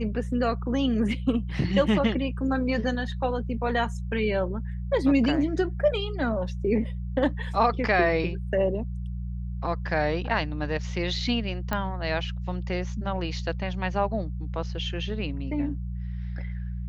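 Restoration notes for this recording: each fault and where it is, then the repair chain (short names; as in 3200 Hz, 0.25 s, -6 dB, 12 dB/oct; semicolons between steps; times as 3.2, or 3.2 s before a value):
hum 60 Hz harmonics 3 -32 dBFS
11.73 pop -13 dBFS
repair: de-click; de-hum 60 Hz, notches 3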